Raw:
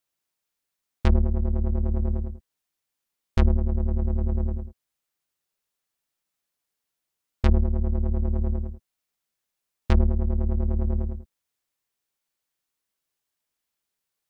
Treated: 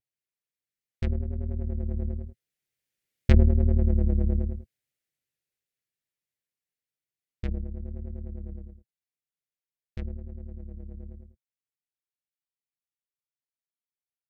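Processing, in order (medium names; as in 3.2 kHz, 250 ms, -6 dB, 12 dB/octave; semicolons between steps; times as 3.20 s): Doppler pass-by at 3.69 s, 10 m/s, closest 7.9 m; vibrato 0.9 Hz 53 cents; ten-band graphic EQ 125 Hz +10 dB, 500 Hz +5 dB, 1 kHz -12 dB, 2 kHz +7 dB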